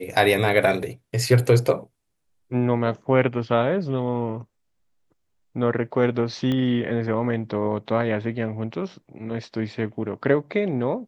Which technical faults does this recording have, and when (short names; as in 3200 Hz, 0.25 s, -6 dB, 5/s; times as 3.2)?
6.52 pop -15 dBFS